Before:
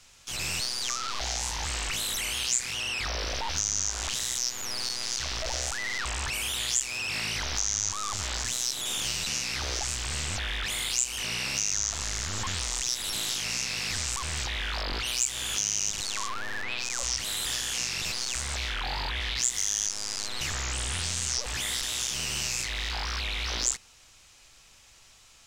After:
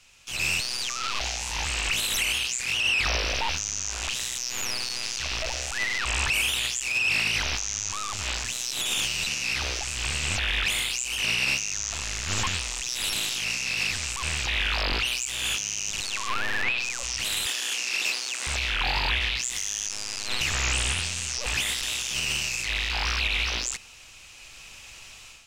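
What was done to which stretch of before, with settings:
0:17.46–0:18.47: high-pass filter 260 Hz 24 dB per octave
whole clip: parametric band 2,600 Hz +9 dB 0.4 octaves; automatic gain control; brickwall limiter −13 dBFS; level −3 dB

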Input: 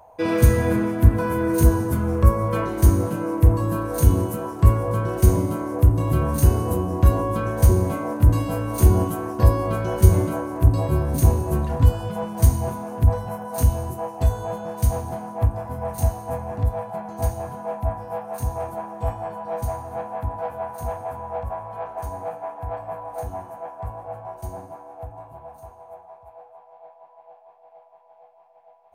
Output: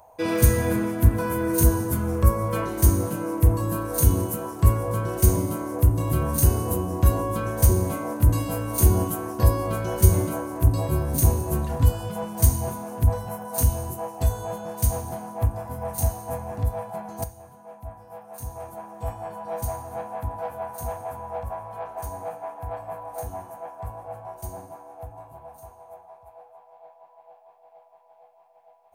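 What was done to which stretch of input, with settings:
0:17.24–0:19.47: fade in quadratic, from −13 dB
whole clip: high-shelf EQ 5,000 Hz +10.5 dB; level −3 dB

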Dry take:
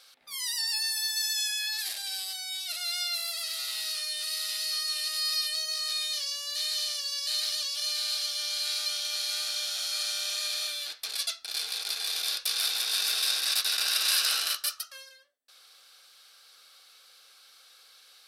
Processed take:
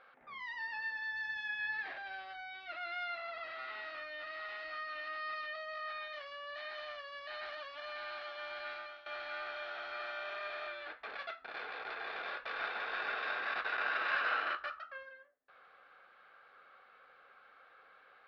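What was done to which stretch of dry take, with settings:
0:08.66–0:09.06: fade out, to −15.5 dB
whole clip: inverse Chebyshev low-pass filter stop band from 9,200 Hz, stop band 80 dB; level +5.5 dB

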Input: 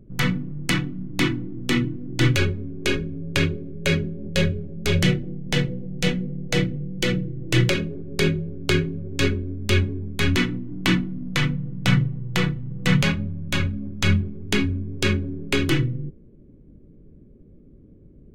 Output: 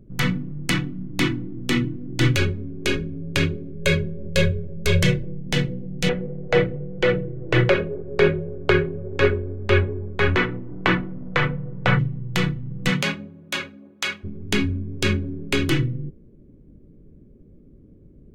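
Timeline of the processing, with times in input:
0:03.79–0:05.41: comb filter 1.9 ms, depth 63%
0:06.09–0:11.99: drawn EQ curve 110 Hz 0 dB, 280 Hz −6 dB, 430 Hz +10 dB, 1,500 Hz +7 dB, 5,100 Hz −10 dB, 12,000 Hz −24 dB
0:12.89–0:14.23: high-pass filter 200 Hz → 720 Hz

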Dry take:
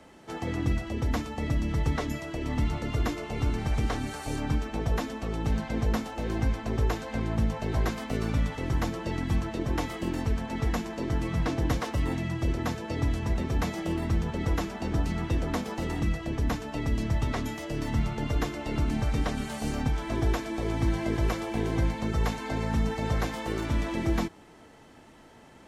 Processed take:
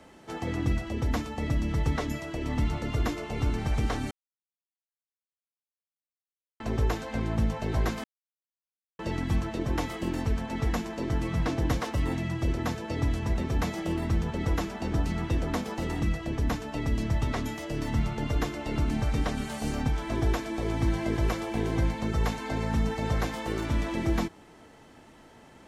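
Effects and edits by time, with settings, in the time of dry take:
0:04.11–0:06.60: silence
0:08.04–0:08.99: silence

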